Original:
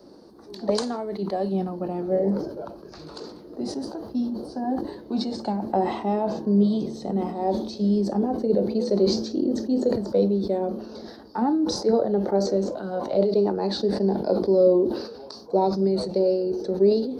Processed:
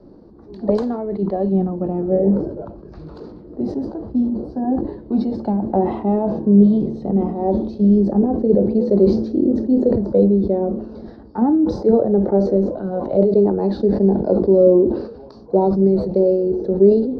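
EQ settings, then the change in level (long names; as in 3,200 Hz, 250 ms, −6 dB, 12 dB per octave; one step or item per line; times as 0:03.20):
RIAA equalisation playback
dynamic equaliser 460 Hz, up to +4 dB, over −30 dBFS, Q 0.8
high-shelf EQ 4,700 Hz −10.5 dB
−1.0 dB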